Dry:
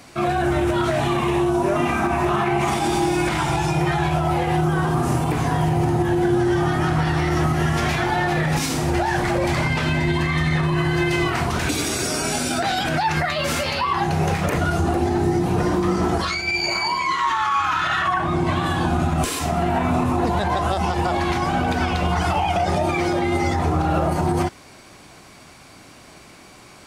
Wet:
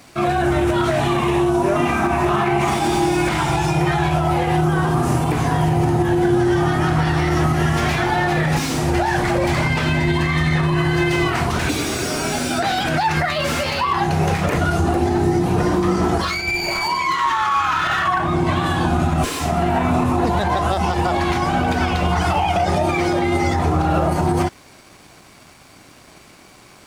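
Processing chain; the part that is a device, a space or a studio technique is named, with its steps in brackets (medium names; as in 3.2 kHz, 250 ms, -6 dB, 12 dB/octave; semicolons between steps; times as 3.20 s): early transistor amplifier (crossover distortion -52.5 dBFS; slew-rate limiter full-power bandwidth 210 Hz); trim +2.5 dB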